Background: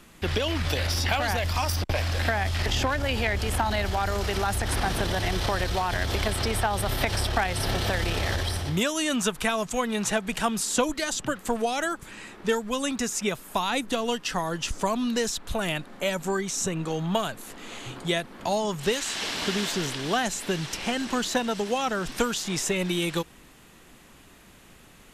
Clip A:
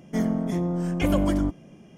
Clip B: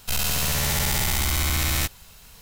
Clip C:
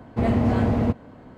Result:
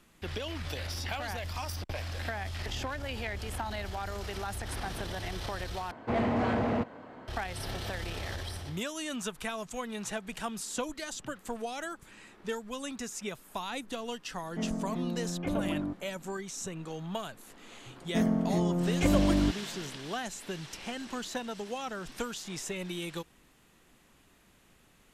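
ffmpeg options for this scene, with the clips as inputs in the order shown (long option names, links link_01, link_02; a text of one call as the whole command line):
ffmpeg -i bed.wav -i cue0.wav -i cue1.wav -i cue2.wav -filter_complex "[1:a]asplit=2[link_01][link_02];[0:a]volume=-10.5dB[link_03];[3:a]asplit=2[link_04][link_05];[link_05]highpass=frequency=720:poles=1,volume=20dB,asoftclip=type=tanh:threshold=-9.5dB[link_06];[link_04][link_06]amix=inputs=2:normalize=0,lowpass=frequency=3300:poles=1,volume=-6dB[link_07];[link_01]highpass=110,lowpass=2200[link_08];[link_03]asplit=2[link_09][link_10];[link_09]atrim=end=5.914[link_11];[link_07]atrim=end=1.37,asetpts=PTS-STARTPTS,volume=-10.5dB[link_12];[link_10]atrim=start=7.276[link_13];[link_08]atrim=end=1.97,asetpts=PTS-STARTPTS,volume=-9dB,afade=type=in:duration=0.004:curve=hsin,afade=type=out:start_time=1.966:duration=0.004:curve=hsin,adelay=14430[link_14];[link_02]atrim=end=1.97,asetpts=PTS-STARTPTS,volume=-2.5dB,afade=type=in:duration=0.004:curve=hsin,afade=type=out:start_time=1.966:duration=0.004:curve=hsin,adelay=18010[link_15];[link_11][link_12]acrossfade=duration=0.004:curve1=hsin:curve2=hsin[link_16];[link_16][link_13]acrossfade=duration=0.004:curve1=hsin:curve2=hsin[link_17];[link_17][link_14][link_15]amix=inputs=3:normalize=0" out.wav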